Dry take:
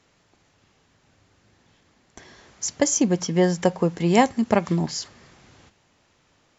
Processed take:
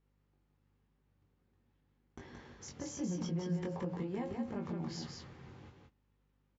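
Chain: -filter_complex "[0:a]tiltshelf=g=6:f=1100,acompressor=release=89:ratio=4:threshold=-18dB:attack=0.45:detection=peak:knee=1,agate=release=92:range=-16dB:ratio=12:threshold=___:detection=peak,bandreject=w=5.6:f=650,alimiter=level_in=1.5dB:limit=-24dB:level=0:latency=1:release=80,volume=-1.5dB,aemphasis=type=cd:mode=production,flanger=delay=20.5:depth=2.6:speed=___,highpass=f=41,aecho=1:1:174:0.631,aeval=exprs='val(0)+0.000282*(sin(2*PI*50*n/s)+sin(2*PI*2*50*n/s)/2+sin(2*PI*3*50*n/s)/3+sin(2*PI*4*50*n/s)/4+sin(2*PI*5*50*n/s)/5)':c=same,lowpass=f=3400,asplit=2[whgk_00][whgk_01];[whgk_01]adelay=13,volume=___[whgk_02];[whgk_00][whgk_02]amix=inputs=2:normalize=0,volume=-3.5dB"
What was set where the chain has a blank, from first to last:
-52dB, 0.46, -11.5dB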